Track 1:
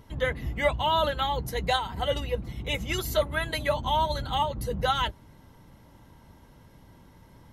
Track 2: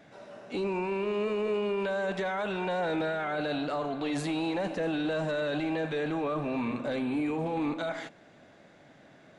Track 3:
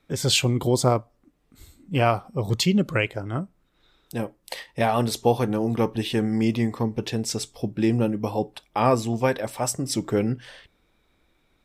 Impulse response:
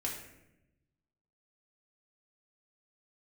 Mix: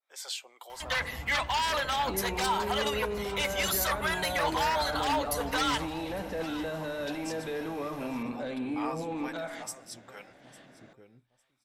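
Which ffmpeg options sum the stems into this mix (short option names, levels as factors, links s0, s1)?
-filter_complex "[0:a]aeval=exprs='0.266*sin(PI/2*3.55*val(0)/0.266)':c=same,adelay=700,volume=0.596,asplit=3[s0][s1][s2];[s1]volume=0.0794[s3];[s2]volume=0.0668[s4];[1:a]bandreject=f=50:t=h:w=6,bandreject=f=100:t=h:w=6,bandreject=f=150:t=h:w=6,acompressor=threshold=0.0112:ratio=1.5,adelay=1550,volume=0.75,asplit=2[s5][s6];[s6]volume=0.316[s7];[2:a]alimiter=limit=0.299:level=0:latency=1:release=442,acrossover=split=490[s8][s9];[s8]aeval=exprs='val(0)*(1-0.7/2+0.7/2*cos(2*PI*2.3*n/s))':c=same[s10];[s9]aeval=exprs='val(0)*(1-0.7/2-0.7/2*cos(2*PI*2.3*n/s))':c=same[s11];[s10][s11]amix=inputs=2:normalize=0,volume=0.335,asplit=2[s12][s13];[s13]volume=0.106[s14];[s0][s12]amix=inputs=2:normalize=0,highpass=f=690:w=0.5412,highpass=f=690:w=1.3066,alimiter=limit=0.1:level=0:latency=1:release=36,volume=1[s15];[3:a]atrim=start_sample=2205[s16];[s3][s7]amix=inputs=2:normalize=0[s17];[s17][s16]afir=irnorm=-1:irlink=0[s18];[s4][s14]amix=inputs=2:normalize=0,aecho=0:1:853|1706|2559:1|0.17|0.0289[s19];[s5][s15][s18][s19]amix=inputs=4:normalize=0,adynamicequalizer=threshold=0.00891:dfrequency=3000:dqfactor=0.94:tfrequency=3000:tqfactor=0.94:attack=5:release=100:ratio=0.375:range=2:mode=cutabove:tftype=bell"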